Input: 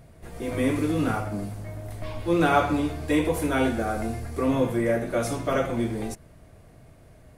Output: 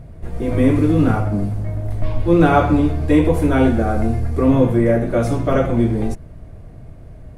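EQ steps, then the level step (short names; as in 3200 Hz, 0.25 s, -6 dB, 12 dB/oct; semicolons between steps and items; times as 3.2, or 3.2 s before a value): tilt -2.5 dB/oct; +5.0 dB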